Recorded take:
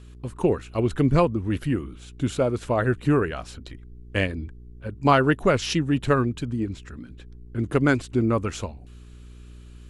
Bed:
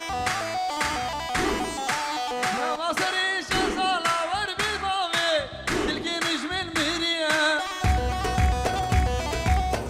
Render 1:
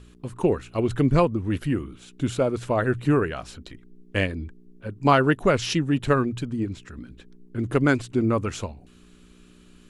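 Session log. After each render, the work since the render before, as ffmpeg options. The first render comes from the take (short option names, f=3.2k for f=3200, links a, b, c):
-af "bandreject=f=60:t=h:w=4,bandreject=f=120:t=h:w=4"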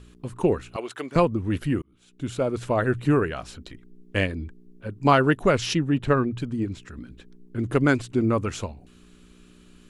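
-filter_complex "[0:a]asettb=1/sr,asplit=3[a][b][c];[a]atrim=end=0.764[d];[b]atrim=start=0.76:end=1.16,asetpts=PTS-STARTPTS,afade=t=in:d=0.004:c=qsin,afade=t=out:st=0.396:d=0.004:c=qsin,highpass=640[e];[c]atrim=start=1.156[f];[d][e]acrossfade=d=0.004:c1=hsin:c2=qsin[g];[g][f]acrossfade=d=0.004:c1=qsin:c2=hsin,asettb=1/sr,asplit=3[h][i][j];[h]atrim=end=5.744[k];[i]atrim=start=5.74:end=6.4,asetpts=PTS-STARTPTS,afade=t=in:d=0.004:c=qsin,afade=t=out:st=0.656:d=0.004:c=qsin,highshelf=f=4.8k:g=-11.5[l];[j]atrim=start=6.396[m];[k][l]acrossfade=d=0.004:c1=hsin:c2=qsin[n];[n][m]acrossfade=d=0.004:c1=qsin:c2=hsin,asplit=2[o][p];[o]atrim=end=1.82,asetpts=PTS-STARTPTS,afade=t=out:st=1.816:d=0.004:c=hsin[q];[p]atrim=start=1.82,asetpts=PTS-STARTPTS,afade=t=in:d=0.79[r];[q][r]concat=n=2:v=0:a=1"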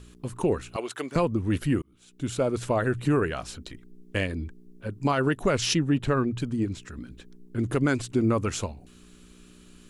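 -filter_complex "[0:a]acrossover=split=4800[a][b];[b]acontrast=33[c];[a][c]amix=inputs=2:normalize=0,alimiter=limit=-14.5dB:level=0:latency=1:release=93"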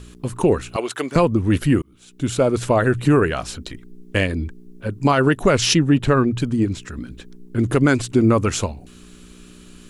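-af "volume=8dB"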